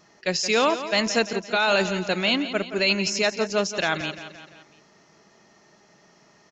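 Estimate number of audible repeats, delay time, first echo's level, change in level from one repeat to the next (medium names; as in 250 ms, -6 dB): 4, 172 ms, -12.0 dB, -5.5 dB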